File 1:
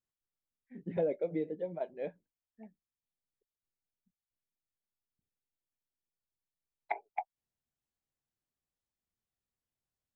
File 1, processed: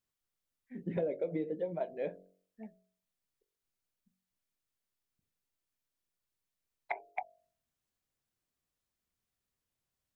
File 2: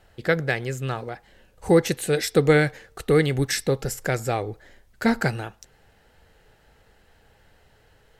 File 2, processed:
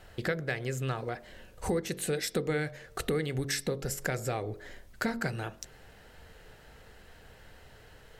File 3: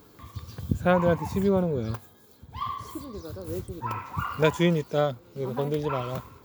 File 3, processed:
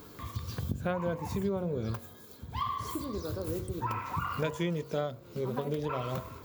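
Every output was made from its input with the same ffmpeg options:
-af "acompressor=threshold=-35dB:ratio=4,bandreject=f=830:w=15,bandreject=f=46.4:t=h:w=4,bandreject=f=92.8:t=h:w=4,bandreject=f=139.2:t=h:w=4,bandreject=f=185.6:t=h:w=4,bandreject=f=232:t=h:w=4,bandreject=f=278.4:t=h:w=4,bandreject=f=324.8:t=h:w=4,bandreject=f=371.2:t=h:w=4,bandreject=f=417.6:t=h:w=4,bandreject=f=464:t=h:w=4,bandreject=f=510.4:t=h:w=4,bandreject=f=556.8:t=h:w=4,bandreject=f=603.2:t=h:w=4,bandreject=f=649.6:t=h:w=4,bandreject=f=696:t=h:w=4,volume=4.5dB"

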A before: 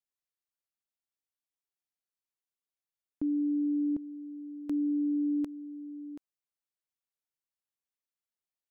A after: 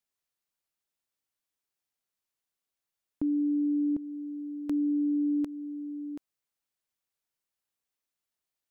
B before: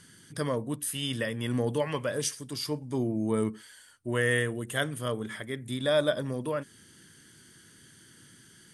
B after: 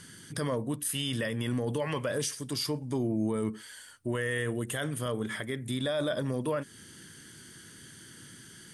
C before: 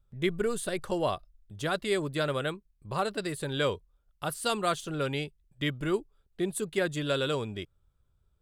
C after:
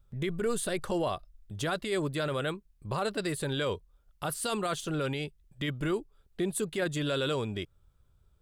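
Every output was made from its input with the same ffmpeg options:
-filter_complex "[0:a]asplit=2[a][b];[b]acompressor=threshold=-39dB:ratio=6,volume=-2dB[c];[a][c]amix=inputs=2:normalize=0,alimiter=limit=-22dB:level=0:latency=1:release=16"

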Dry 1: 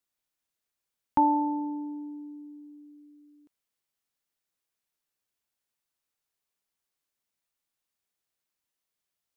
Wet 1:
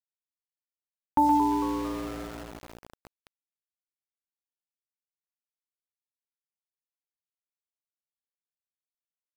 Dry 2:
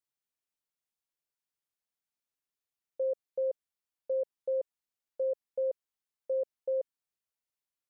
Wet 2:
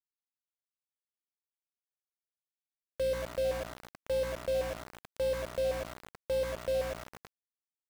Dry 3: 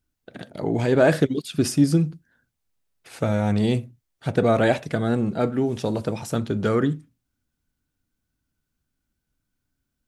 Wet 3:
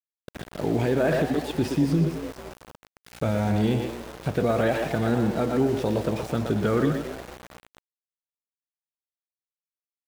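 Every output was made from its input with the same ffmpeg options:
-filter_complex "[0:a]asplit=2[a][b];[b]adelay=120,highpass=300,lowpass=3.4k,asoftclip=type=hard:threshold=-15.5dB,volume=-6dB[c];[a][c]amix=inputs=2:normalize=0,alimiter=limit=-13.5dB:level=0:latency=1:release=66,aeval=exprs='val(0)+0.00708*(sin(2*PI*60*n/s)+sin(2*PI*2*60*n/s)/2+sin(2*PI*3*60*n/s)/3+sin(2*PI*4*60*n/s)/4+sin(2*PI*5*60*n/s)/5)':c=same,acrossover=split=3900[d][e];[e]acompressor=threshold=-50dB:ratio=4:attack=1:release=60[f];[d][f]amix=inputs=2:normalize=0,asplit=2[g][h];[h]asplit=5[i][j][k][l][m];[i]adelay=224,afreqshift=110,volume=-13dB[n];[j]adelay=448,afreqshift=220,volume=-19dB[o];[k]adelay=672,afreqshift=330,volume=-25dB[p];[l]adelay=896,afreqshift=440,volume=-31.1dB[q];[m]adelay=1120,afreqshift=550,volume=-37.1dB[r];[n][o][p][q][r]amix=inputs=5:normalize=0[s];[g][s]amix=inputs=2:normalize=0,aeval=exprs='val(0)*gte(abs(val(0)),0.0168)':c=same"

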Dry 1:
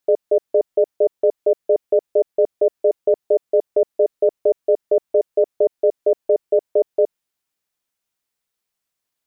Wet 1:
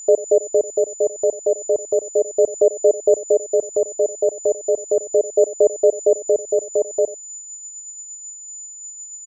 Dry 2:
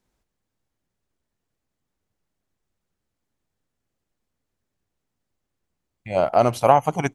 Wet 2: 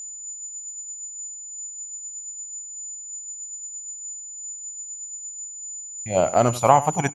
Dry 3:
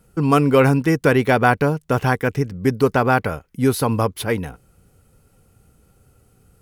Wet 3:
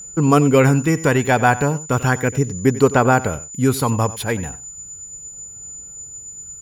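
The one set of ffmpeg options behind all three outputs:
-af "aeval=exprs='val(0)+0.02*sin(2*PI*7000*n/s)':c=same,aecho=1:1:92:0.141,aphaser=in_gain=1:out_gain=1:delay=1.2:decay=0.27:speed=0.35:type=sinusoidal"

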